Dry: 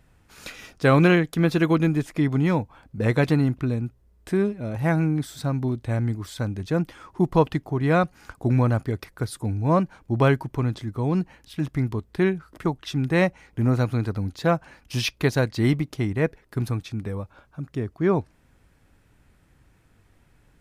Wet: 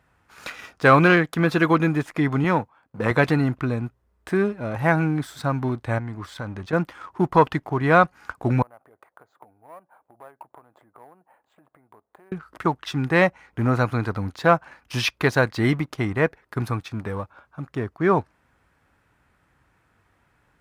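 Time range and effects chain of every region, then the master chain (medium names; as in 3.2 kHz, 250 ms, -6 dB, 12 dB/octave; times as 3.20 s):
2.44–3.11 s: partial rectifier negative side -3 dB + high-pass 110 Hz + gate -51 dBFS, range -8 dB
5.98–6.73 s: treble shelf 9.1 kHz -10.5 dB + compression 4:1, threshold -29 dBFS
8.62–12.32 s: compression 20:1, threshold -34 dBFS + band-pass filter 690 Hz, Q 2.2 + careless resampling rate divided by 4×, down filtered, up hold
whole clip: waveshaping leveller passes 1; high-pass 49 Hz; peaking EQ 1.2 kHz +11 dB 2.1 oct; trim -5 dB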